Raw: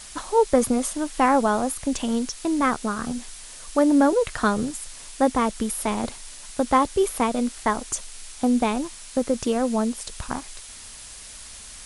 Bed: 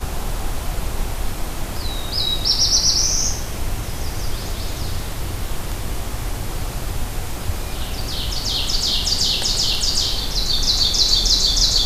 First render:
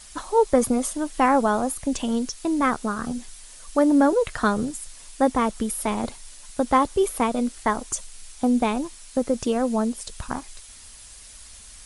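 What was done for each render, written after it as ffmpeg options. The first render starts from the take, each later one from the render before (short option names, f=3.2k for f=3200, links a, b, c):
-af "afftdn=nr=6:nf=-42"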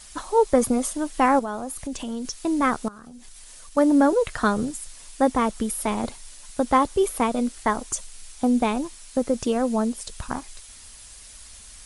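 -filter_complex "[0:a]asettb=1/sr,asplit=3[a][b][c];[a]atrim=end=1.394[d];[b]atrim=start=1.39:end=2.25,asetpts=PTS-STARTPTS,afade=t=in:d=0.004:c=qsin,afade=t=out:st=0.856:d=0.004:c=qsin,acompressor=threshold=-30dB:ratio=2.5:attack=3.2:release=140:knee=1:detection=peak[e];[c]atrim=start=2.246[f];[d][e]acrossfade=d=0.004:c1=hsin:c2=qsin[g];[g][f]acrossfade=d=0.004:c1=qsin:c2=hsin,asettb=1/sr,asplit=3[h][i][j];[h]atrim=end=2.884[k];[i]atrim=start=2.88:end=3.77,asetpts=PTS-STARTPTS,afade=t=in:d=0.004:c=qsin,afade=t=out:st=0.886:d=0.004:c=qsin,acompressor=threshold=-39dB:ratio=20:attack=3.2:release=140:knee=1:detection=peak[l];[j]atrim=start=3.766[m];[k][l]acrossfade=d=0.004:c1=hsin:c2=qsin[n];[n][m]acrossfade=d=0.004:c1=qsin:c2=hsin"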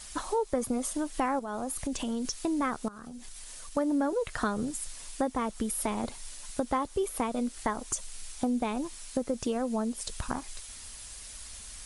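-af "acompressor=threshold=-29dB:ratio=3"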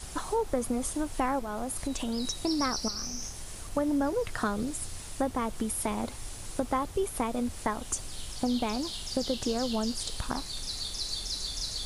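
-filter_complex "[1:a]volume=-19dB[a];[0:a][a]amix=inputs=2:normalize=0"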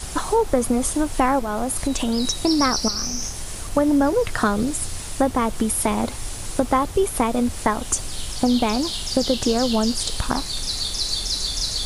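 -af "volume=10dB"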